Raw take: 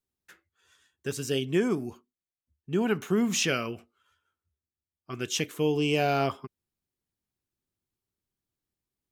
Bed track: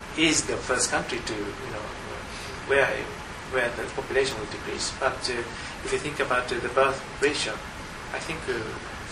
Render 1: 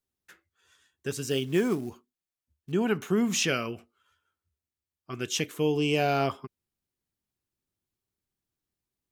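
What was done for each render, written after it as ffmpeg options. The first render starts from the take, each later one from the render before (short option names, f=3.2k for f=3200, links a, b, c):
-filter_complex "[0:a]asettb=1/sr,asplit=3[a][b][c];[a]atrim=end=1.304[d];[b]atrim=start=1.3:end=2.72,asetpts=PTS-STARTPTS,afade=t=in:d=0.004:c=qsin,afade=t=out:st=1.416:d=0.004:c=qsin,acrusher=bits=6:mode=log:mix=0:aa=0.000001[e];[c]atrim=start=2.716[f];[d][e]acrossfade=d=0.004:c1=hsin:c2=qsin[g];[g][f]acrossfade=d=0.004:c1=qsin:c2=hsin"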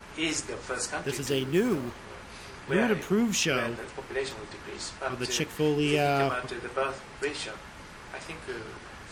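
-filter_complex "[1:a]volume=-8dB[a];[0:a][a]amix=inputs=2:normalize=0"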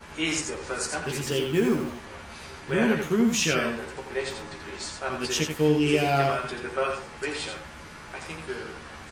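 -filter_complex "[0:a]asplit=2[a][b];[b]adelay=13,volume=-4.5dB[c];[a][c]amix=inputs=2:normalize=0,aecho=1:1:86:0.501"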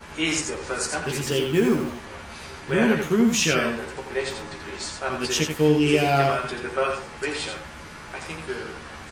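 -af "volume=3dB"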